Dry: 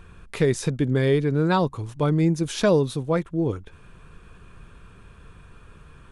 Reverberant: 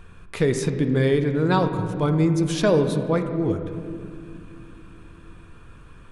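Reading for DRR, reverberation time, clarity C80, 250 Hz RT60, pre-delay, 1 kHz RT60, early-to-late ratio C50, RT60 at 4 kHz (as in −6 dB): 6.5 dB, 2.7 s, 9.0 dB, 4.4 s, 3 ms, 2.3 s, 8.0 dB, 1.6 s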